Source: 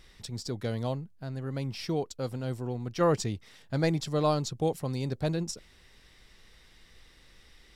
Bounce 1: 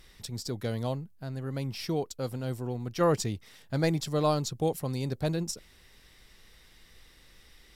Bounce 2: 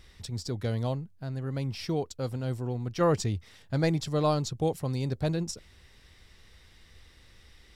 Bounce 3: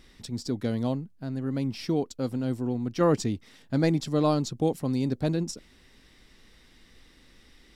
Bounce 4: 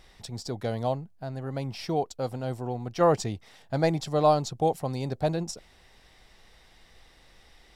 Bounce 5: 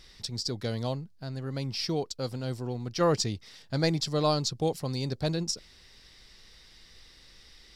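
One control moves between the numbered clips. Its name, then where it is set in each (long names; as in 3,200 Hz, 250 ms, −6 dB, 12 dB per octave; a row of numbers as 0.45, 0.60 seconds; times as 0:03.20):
parametric band, centre frequency: 14,000, 82, 260, 740, 4,800 Hertz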